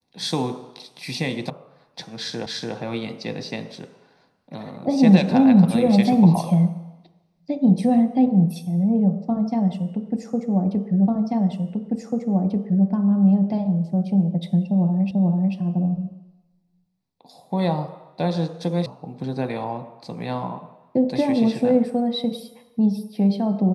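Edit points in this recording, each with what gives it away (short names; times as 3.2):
1.5 sound cut off
2.46 repeat of the last 0.29 s
11.08 repeat of the last 1.79 s
15.11 repeat of the last 0.44 s
18.86 sound cut off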